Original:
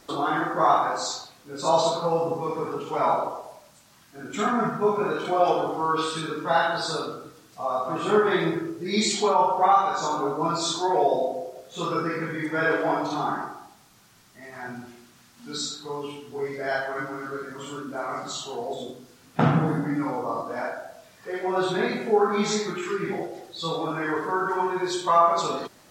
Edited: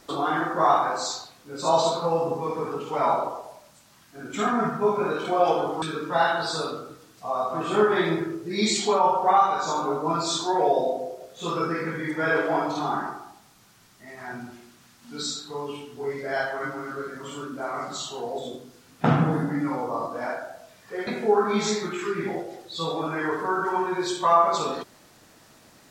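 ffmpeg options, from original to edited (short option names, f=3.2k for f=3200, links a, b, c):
-filter_complex "[0:a]asplit=3[a][b][c];[a]atrim=end=5.822[d];[b]atrim=start=6.168:end=21.422[e];[c]atrim=start=21.908[f];[d][e]acrossfade=d=0.004:c1=hsin:c2=hsin[g];[g][f]acrossfade=d=0.004:c1=hsin:c2=hsin"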